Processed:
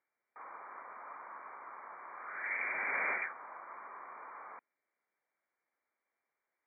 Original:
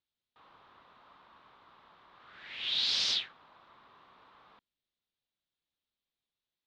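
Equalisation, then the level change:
high-pass filter 480 Hz 12 dB per octave
linear-phase brick-wall low-pass 2,400 Hz
+12.0 dB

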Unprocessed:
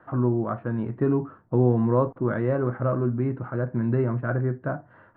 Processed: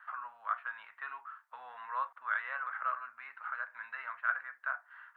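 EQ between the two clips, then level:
inverse Chebyshev high-pass filter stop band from 380 Hz, stop band 60 dB
+4.5 dB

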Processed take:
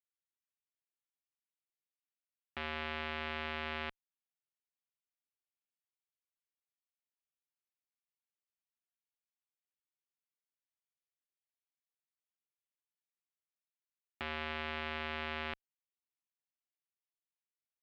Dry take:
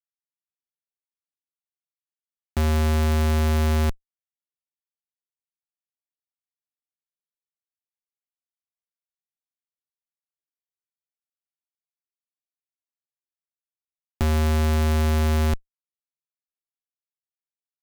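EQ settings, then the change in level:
resonant band-pass 2,900 Hz, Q 1.4
high-frequency loss of the air 430 metres
+3.5 dB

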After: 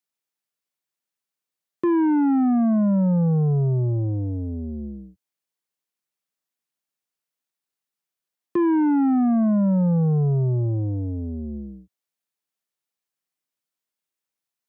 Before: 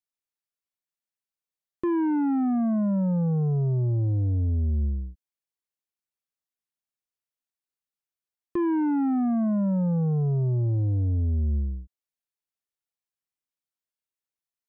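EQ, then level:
high-pass filter 120 Hz 24 dB per octave
+5.0 dB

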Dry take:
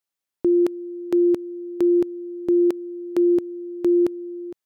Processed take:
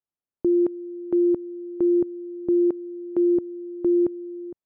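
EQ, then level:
low-pass filter 1,100 Hz 12 dB per octave
low-shelf EQ 380 Hz +6.5 dB
−5.5 dB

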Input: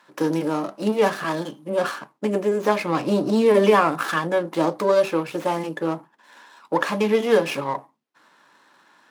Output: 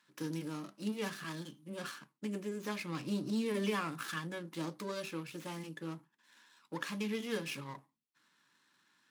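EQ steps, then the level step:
guitar amp tone stack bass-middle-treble 6-0-2
+5.0 dB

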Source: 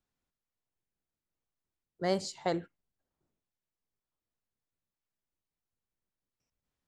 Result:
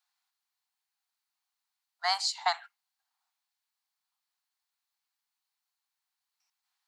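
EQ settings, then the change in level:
Butterworth high-pass 730 Hz 96 dB per octave
dynamic equaliser 1,100 Hz, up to +6 dB, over −51 dBFS, Q 1.3
parametric band 4,300 Hz +7.5 dB 0.35 octaves
+6.5 dB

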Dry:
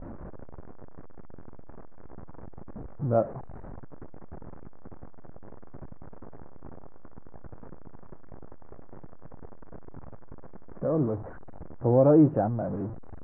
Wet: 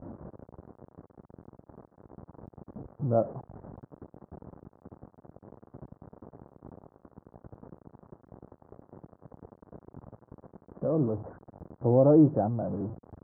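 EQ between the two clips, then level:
high-pass filter 83 Hz
low-pass filter 1,200 Hz 12 dB per octave
high-frequency loss of the air 390 metres
0.0 dB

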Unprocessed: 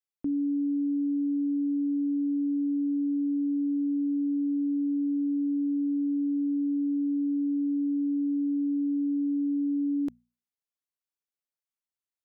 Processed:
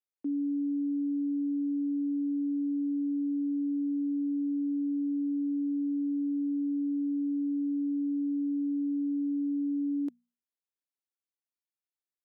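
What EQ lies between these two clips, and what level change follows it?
four-pole ladder high-pass 220 Hz, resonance 40%
0.0 dB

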